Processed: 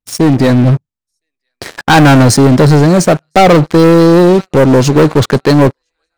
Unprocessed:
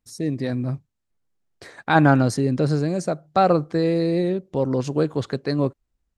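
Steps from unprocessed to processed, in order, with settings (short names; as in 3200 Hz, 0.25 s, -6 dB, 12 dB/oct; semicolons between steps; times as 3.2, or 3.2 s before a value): thin delay 1.012 s, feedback 49%, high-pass 1700 Hz, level -22 dB; sample leveller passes 5; gain +2 dB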